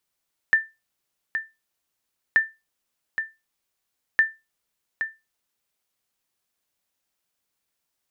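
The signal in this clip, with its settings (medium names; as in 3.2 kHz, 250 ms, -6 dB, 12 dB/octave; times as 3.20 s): sonar ping 1.78 kHz, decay 0.23 s, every 1.83 s, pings 3, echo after 0.82 s, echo -9 dB -9.5 dBFS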